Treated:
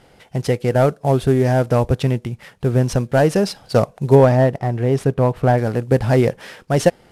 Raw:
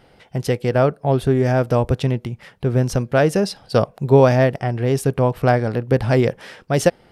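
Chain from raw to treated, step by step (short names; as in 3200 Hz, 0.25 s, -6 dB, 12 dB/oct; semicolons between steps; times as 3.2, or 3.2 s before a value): CVSD 64 kbps; 4.15–5.58 high shelf 3300 Hz -9 dB; gain +1.5 dB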